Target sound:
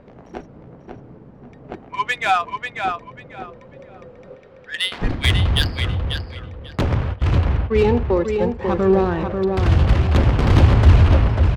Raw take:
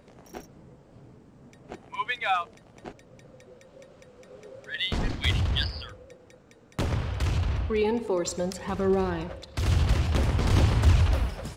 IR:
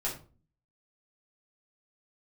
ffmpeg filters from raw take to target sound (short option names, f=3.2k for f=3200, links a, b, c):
-filter_complex "[0:a]asplit=3[a][b][c];[a]afade=t=out:st=4.34:d=0.02[d];[b]bandpass=f=3k:t=q:w=0.59:csg=0,afade=t=in:st=4.34:d=0.02,afade=t=out:st=5.01:d=0.02[e];[c]afade=t=in:st=5.01:d=0.02[f];[d][e][f]amix=inputs=3:normalize=0,asplit=3[g][h][i];[g]afade=t=out:st=7.12:d=0.02[j];[h]agate=range=-24dB:threshold=-28dB:ratio=16:detection=peak,afade=t=in:st=7.12:d=0.02,afade=t=out:st=8.58:d=0.02[k];[i]afade=t=in:st=8.58:d=0.02[l];[j][k][l]amix=inputs=3:normalize=0,adynamicsmooth=sensitivity=3:basefreq=2.3k,asplit=2[m][n];[n]adelay=542,lowpass=f=3.8k:p=1,volume=-5dB,asplit=2[o][p];[p]adelay=542,lowpass=f=3.8k:p=1,volume=0.24,asplit=2[q][r];[r]adelay=542,lowpass=f=3.8k:p=1,volume=0.24[s];[o][q][s]amix=inputs=3:normalize=0[t];[m][t]amix=inputs=2:normalize=0,volume=8.5dB"